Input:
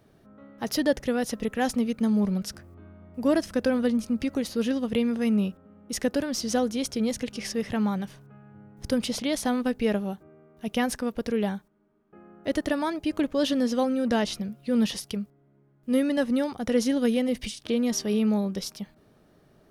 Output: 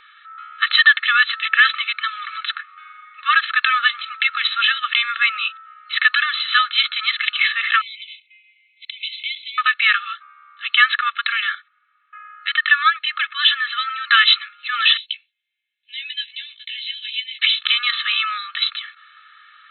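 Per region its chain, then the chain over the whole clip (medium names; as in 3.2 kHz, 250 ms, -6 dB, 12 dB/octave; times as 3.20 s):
7.81–9.58 s: brick-wall FIR high-pass 2 kHz + compression 2:1, threshold -57 dBFS
11.40–14.09 s: low-pass 2.4 kHz 6 dB/octave + peaking EQ 950 Hz -9.5 dB 0.65 oct
14.97–17.39 s: inverse Chebyshev high-pass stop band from 1.4 kHz + tape spacing loss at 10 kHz 25 dB + doubling 16 ms -5 dB
whole clip: FFT band-pass 1.1–4.2 kHz; comb 2.3 ms, depth 88%; loudness maximiser +22.5 dB; trim -1 dB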